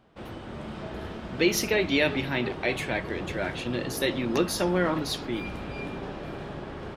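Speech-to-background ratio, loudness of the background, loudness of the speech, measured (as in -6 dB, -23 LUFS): 10.0 dB, -37.5 LUFS, -27.5 LUFS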